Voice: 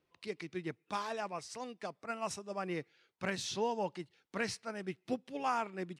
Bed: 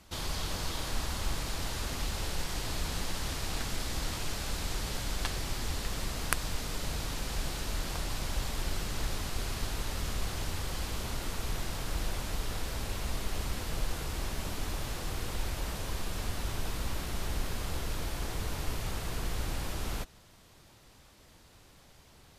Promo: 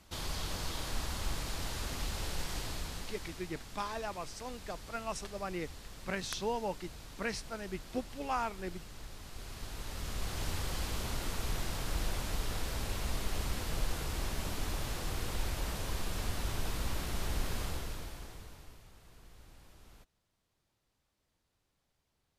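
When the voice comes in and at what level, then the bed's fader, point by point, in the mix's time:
2.85 s, −0.5 dB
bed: 0:02.57 −3 dB
0:03.55 −14 dB
0:09.13 −14 dB
0:10.49 −1 dB
0:17.62 −1 dB
0:18.89 −22.5 dB

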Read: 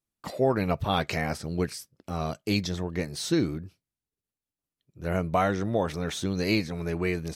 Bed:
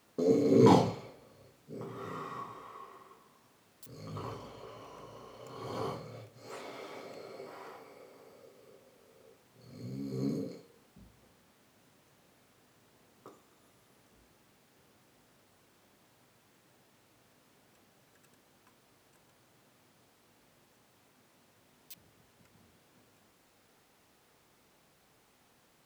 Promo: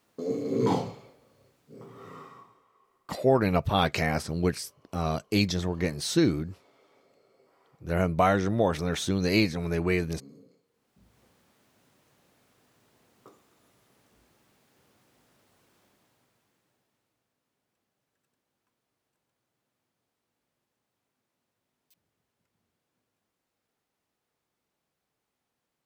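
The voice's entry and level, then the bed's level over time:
2.85 s, +2.0 dB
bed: 0:02.21 −4 dB
0:02.67 −17 dB
0:10.60 −17 dB
0:11.18 −0.5 dB
0:15.79 −0.5 dB
0:17.33 −16.5 dB

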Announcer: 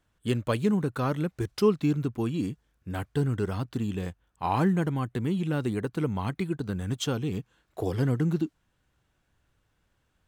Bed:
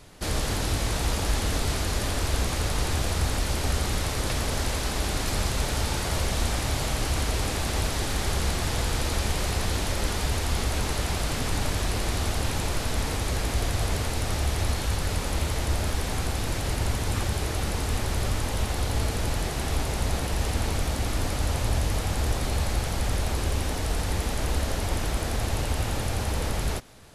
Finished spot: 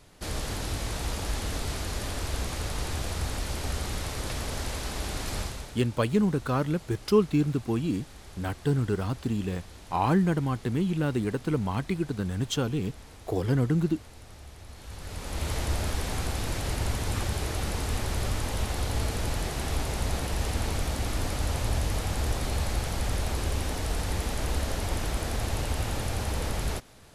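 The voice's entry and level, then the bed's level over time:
5.50 s, +1.0 dB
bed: 0:05.40 −5.5 dB
0:05.84 −20.5 dB
0:14.67 −20.5 dB
0:15.51 −2.5 dB

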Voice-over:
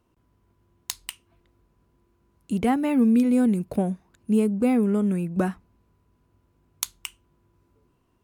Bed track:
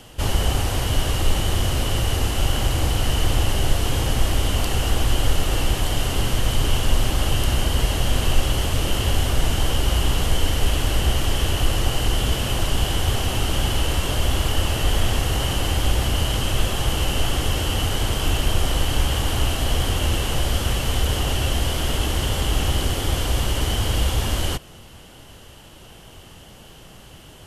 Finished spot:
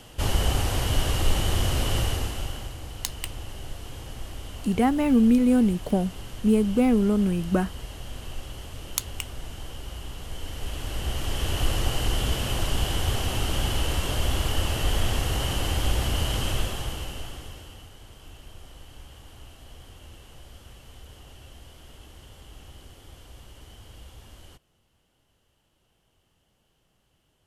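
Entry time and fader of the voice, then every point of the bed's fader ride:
2.15 s, +0.5 dB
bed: 0:02.01 −3 dB
0:02.78 −17.5 dB
0:10.19 −17.5 dB
0:11.63 −4.5 dB
0:16.50 −4.5 dB
0:17.93 −25.5 dB

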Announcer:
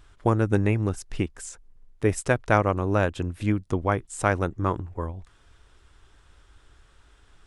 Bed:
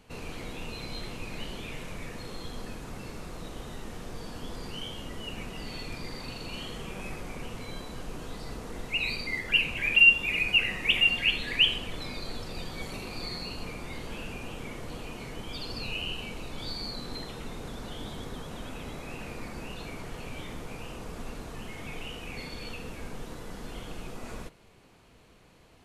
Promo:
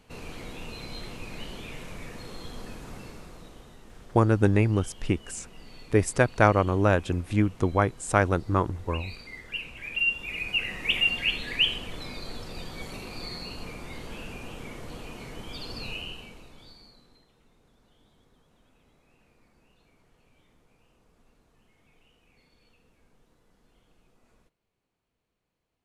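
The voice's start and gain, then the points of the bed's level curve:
3.90 s, +1.0 dB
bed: 0:02.94 −1 dB
0:03.78 −10.5 dB
0:09.78 −10.5 dB
0:10.92 −1 dB
0:15.90 −1 dB
0:17.26 −24.5 dB

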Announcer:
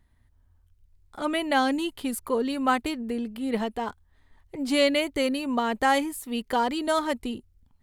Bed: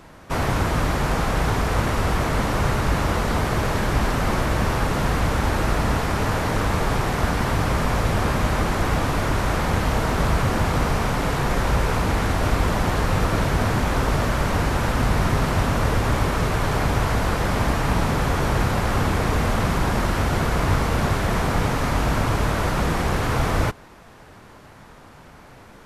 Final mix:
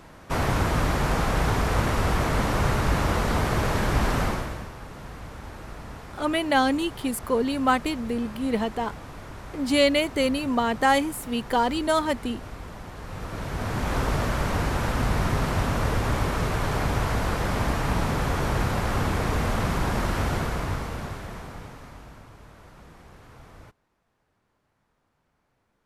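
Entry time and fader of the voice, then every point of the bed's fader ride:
5.00 s, +2.0 dB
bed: 0:04.22 −2 dB
0:04.72 −18.5 dB
0:12.94 −18.5 dB
0:13.95 −4 dB
0:20.29 −4 dB
0:22.32 −27 dB

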